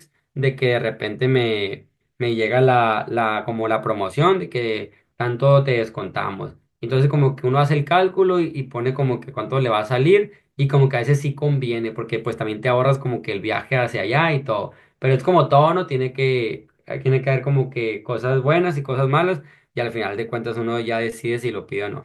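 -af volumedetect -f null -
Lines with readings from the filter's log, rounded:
mean_volume: -20.0 dB
max_volume: -2.2 dB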